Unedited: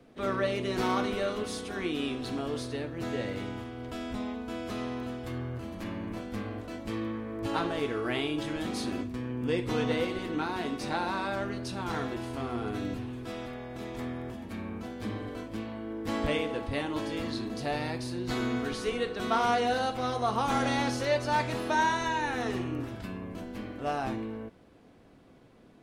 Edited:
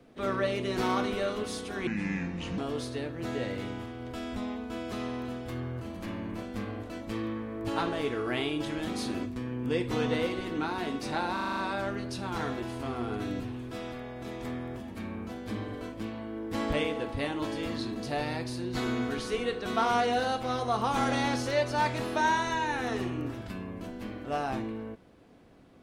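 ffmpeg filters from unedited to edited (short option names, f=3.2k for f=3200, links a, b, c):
-filter_complex "[0:a]asplit=9[a][b][c][d][e][f][g][h][i];[a]atrim=end=1.874[j];[b]atrim=start=1.87:end=2.36,asetpts=PTS-STARTPTS,asetrate=30429,aresample=44100,atrim=end_sample=31317,asetpts=PTS-STARTPTS[k];[c]atrim=start=2.356:end=11.152[l];[d]atrim=start=11.108:end=11.152[m];[e]atrim=start=11.108:end=11.152[n];[f]atrim=start=11.108:end=11.152[o];[g]atrim=start=11.108:end=11.152[p];[h]atrim=start=11.108:end=11.152[q];[i]atrim=start=11.108[r];[j][k]acrossfade=d=0.004:c1=hsin:c2=hsin[s];[s][l]acrossfade=d=0.004:c1=hsin:c2=hsin[t];[t][m]acrossfade=d=0.004:c1=hsin:c2=hsin[u];[u][n]acrossfade=d=0.004:c1=hsin:c2=hsin[v];[v][o]acrossfade=d=0.004:c1=hsin:c2=hsin[w];[w][p]acrossfade=d=0.004:c1=hsin:c2=hsin[x];[x][q]acrossfade=d=0.004:c1=hsin:c2=hsin[y];[y][r]acrossfade=d=0.004:c1=hsin:c2=hsin"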